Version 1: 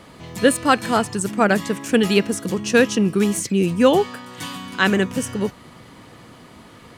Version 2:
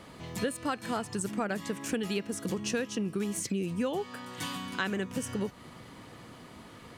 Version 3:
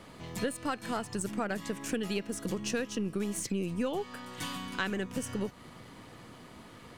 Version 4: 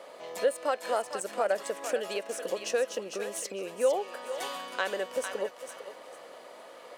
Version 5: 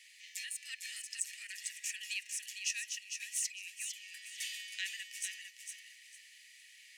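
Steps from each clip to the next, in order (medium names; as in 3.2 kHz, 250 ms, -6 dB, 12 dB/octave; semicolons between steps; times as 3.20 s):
compression 6:1, threshold -24 dBFS, peak gain reduction 14.5 dB; trim -5 dB
partial rectifier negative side -3 dB
resonant high-pass 560 Hz, resonance Q 4.5; thinning echo 453 ms, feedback 24%, high-pass 880 Hz, level -6.5 dB
rippled Chebyshev high-pass 1.8 kHz, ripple 6 dB; trim +3.5 dB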